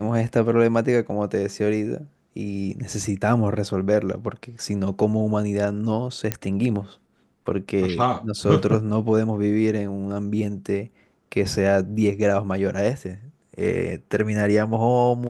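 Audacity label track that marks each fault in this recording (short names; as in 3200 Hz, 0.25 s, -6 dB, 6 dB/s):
6.320000	6.320000	pop -7 dBFS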